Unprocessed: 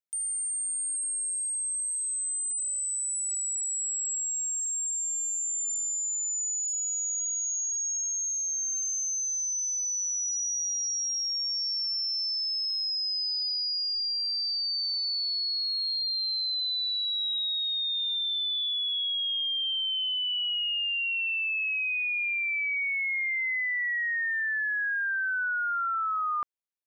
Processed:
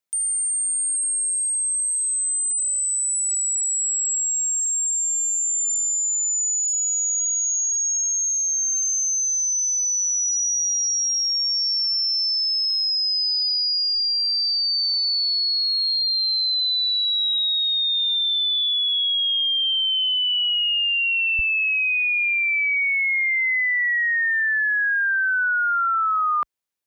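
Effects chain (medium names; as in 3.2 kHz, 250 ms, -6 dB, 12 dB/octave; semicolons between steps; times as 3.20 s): high-pass 88 Hz 12 dB/octave, from 21.39 s 41 Hz; trim +8 dB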